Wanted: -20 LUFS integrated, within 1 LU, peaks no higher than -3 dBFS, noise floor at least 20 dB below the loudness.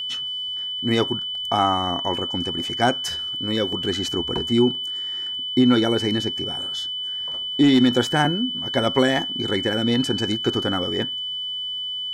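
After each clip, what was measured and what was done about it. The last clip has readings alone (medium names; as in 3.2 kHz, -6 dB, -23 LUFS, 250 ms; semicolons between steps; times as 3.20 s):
tick rate 46 per s; steady tone 3 kHz; tone level -26 dBFS; loudness -22.0 LUFS; peak level -5.5 dBFS; loudness target -20.0 LUFS
-> de-click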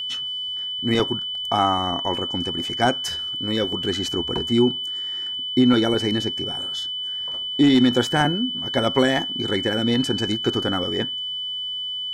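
tick rate 0.74 per s; steady tone 3 kHz; tone level -26 dBFS
-> band-stop 3 kHz, Q 30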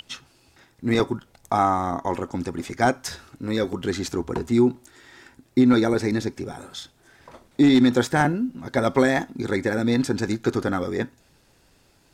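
steady tone not found; loudness -23.0 LUFS; peak level -6.5 dBFS; loudness target -20.0 LUFS
-> trim +3 dB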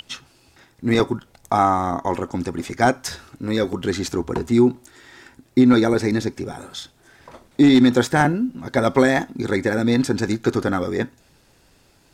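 loudness -20.0 LUFS; peak level -3.5 dBFS; noise floor -57 dBFS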